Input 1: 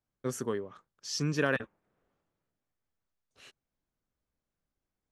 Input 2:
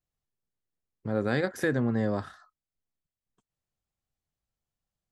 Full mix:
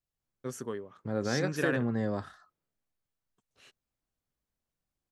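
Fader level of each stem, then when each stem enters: -4.0, -3.5 dB; 0.20, 0.00 s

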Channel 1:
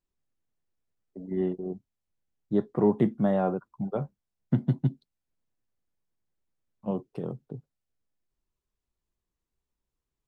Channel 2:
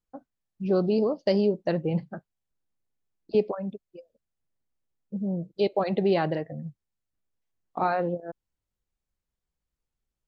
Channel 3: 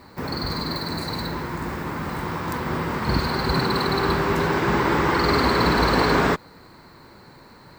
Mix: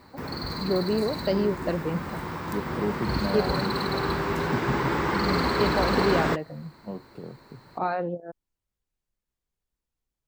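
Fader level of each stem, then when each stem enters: -6.0, -2.0, -5.5 dB; 0.00, 0.00, 0.00 s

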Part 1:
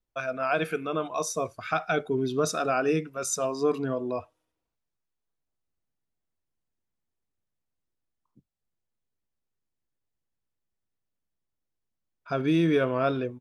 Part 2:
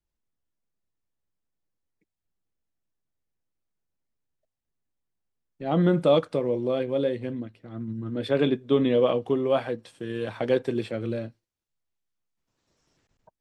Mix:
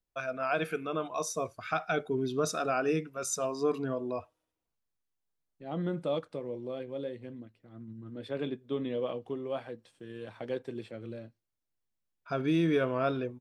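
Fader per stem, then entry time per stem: -4.0, -12.0 dB; 0.00, 0.00 s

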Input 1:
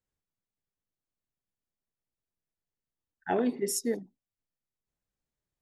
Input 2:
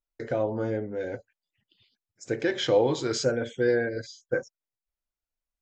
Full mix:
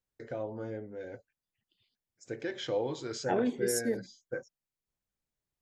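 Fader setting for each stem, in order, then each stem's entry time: -2.0, -10.0 dB; 0.00, 0.00 s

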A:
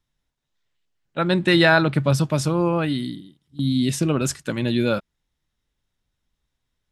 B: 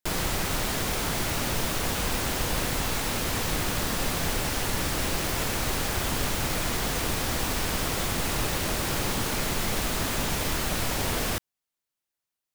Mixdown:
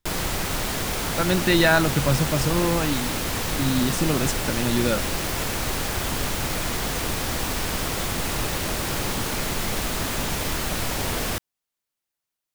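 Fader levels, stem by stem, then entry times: -2.5, +1.5 dB; 0.00, 0.00 s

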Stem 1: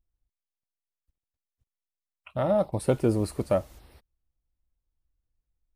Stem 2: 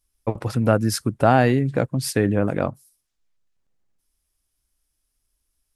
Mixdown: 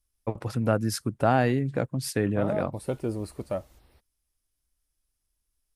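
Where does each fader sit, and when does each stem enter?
-6.5, -6.0 dB; 0.00, 0.00 s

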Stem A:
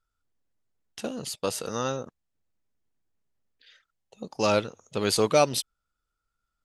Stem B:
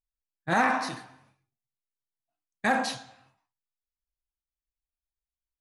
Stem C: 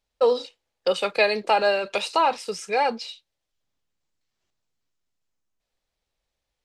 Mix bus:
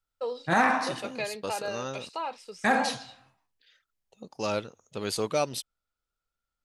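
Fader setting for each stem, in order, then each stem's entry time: -6.5, +1.0, -13.5 dB; 0.00, 0.00, 0.00 s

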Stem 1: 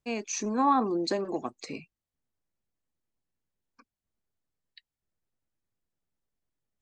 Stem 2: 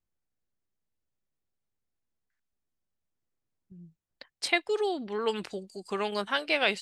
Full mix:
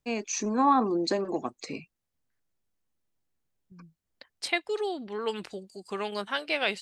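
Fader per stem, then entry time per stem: +1.5, -2.0 dB; 0.00, 0.00 s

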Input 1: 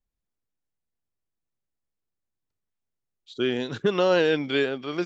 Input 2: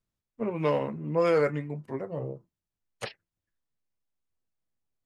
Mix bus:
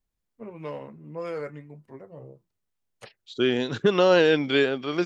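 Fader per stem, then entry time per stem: +2.5, -9.5 dB; 0.00, 0.00 s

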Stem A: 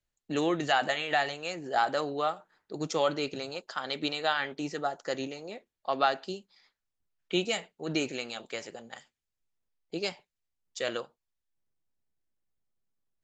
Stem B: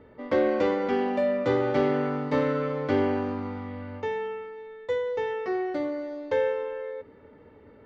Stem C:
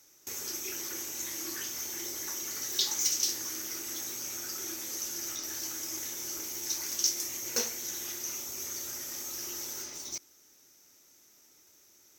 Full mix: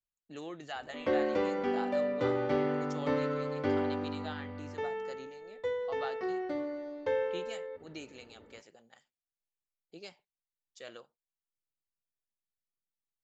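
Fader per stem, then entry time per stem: -15.0 dB, -6.0 dB, off; 0.00 s, 0.75 s, off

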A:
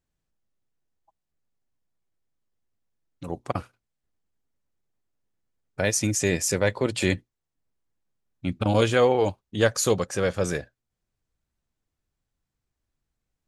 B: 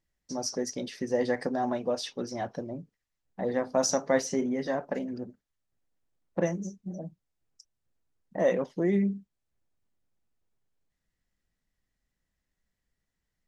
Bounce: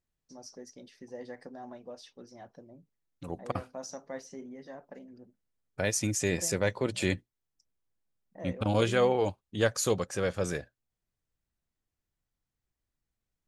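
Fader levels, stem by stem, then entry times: -5.5, -15.5 dB; 0.00, 0.00 s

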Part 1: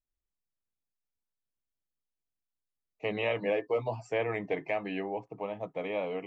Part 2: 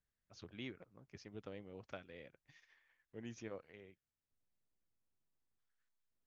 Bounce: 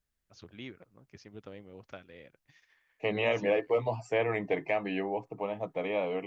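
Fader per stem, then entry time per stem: +2.0, +3.0 dB; 0.00, 0.00 s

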